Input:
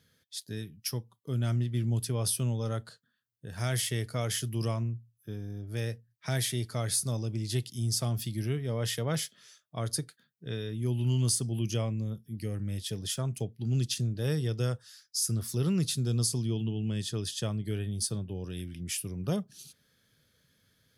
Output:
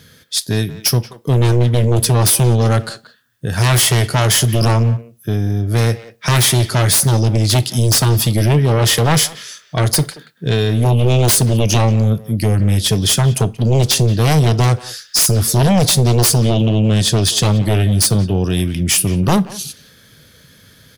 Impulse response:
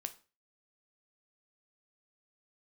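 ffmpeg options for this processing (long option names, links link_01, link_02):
-filter_complex "[0:a]aeval=exprs='0.168*sin(PI/2*3.98*val(0)/0.168)':channel_layout=same,asplit=2[link_01][link_02];[link_02]adelay=180,highpass=300,lowpass=3400,asoftclip=type=hard:threshold=-25dB,volume=-13dB[link_03];[link_01][link_03]amix=inputs=2:normalize=0,asplit=2[link_04][link_05];[1:a]atrim=start_sample=2205[link_06];[link_05][link_06]afir=irnorm=-1:irlink=0,volume=-3dB[link_07];[link_04][link_07]amix=inputs=2:normalize=0,volume=3dB"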